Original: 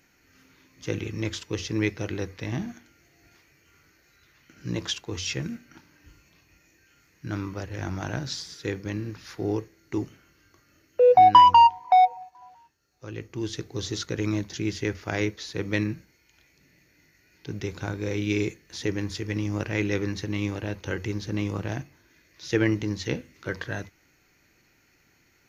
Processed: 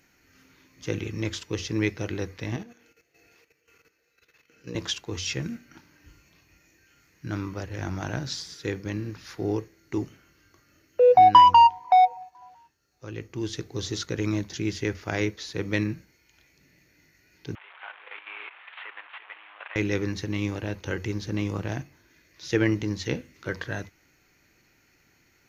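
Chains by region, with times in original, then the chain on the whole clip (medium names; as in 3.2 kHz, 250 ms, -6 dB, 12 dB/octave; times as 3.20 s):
2.56–4.75 s: bass shelf 200 Hz -9 dB + small resonant body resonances 470/2600 Hz, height 17 dB, ringing for 85 ms + level held to a coarse grid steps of 12 dB
17.55–19.76 s: one-bit delta coder 16 kbps, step -30.5 dBFS + high-pass 840 Hz 24 dB/octave + level held to a coarse grid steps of 10 dB
whole clip: none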